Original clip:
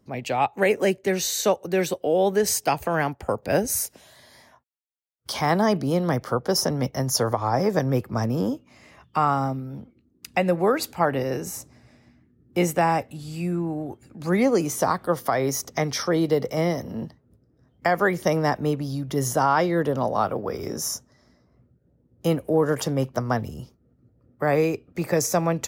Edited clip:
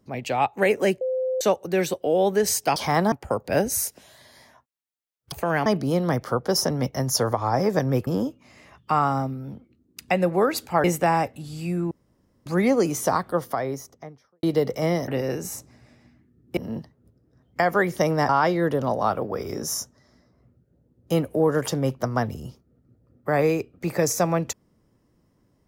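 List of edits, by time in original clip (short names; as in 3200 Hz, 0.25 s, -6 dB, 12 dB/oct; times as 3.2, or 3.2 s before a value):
1.01–1.41 bleep 516 Hz -22 dBFS
2.76–3.1 swap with 5.3–5.66
8.07–8.33 cut
11.1–12.59 move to 16.83
13.66–14.21 room tone
14.84–16.18 studio fade out
18.55–19.43 cut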